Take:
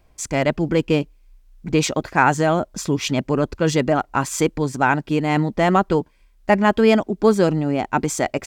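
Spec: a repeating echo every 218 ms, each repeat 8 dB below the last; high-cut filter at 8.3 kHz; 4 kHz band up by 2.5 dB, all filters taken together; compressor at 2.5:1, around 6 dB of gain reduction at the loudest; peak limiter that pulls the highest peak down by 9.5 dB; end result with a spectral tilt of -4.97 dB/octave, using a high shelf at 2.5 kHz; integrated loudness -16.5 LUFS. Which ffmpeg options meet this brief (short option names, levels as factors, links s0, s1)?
-af "lowpass=8300,highshelf=f=2500:g=-5.5,equalizer=f=4000:t=o:g=8.5,acompressor=threshold=0.112:ratio=2.5,alimiter=limit=0.15:level=0:latency=1,aecho=1:1:218|436|654|872|1090:0.398|0.159|0.0637|0.0255|0.0102,volume=3.55"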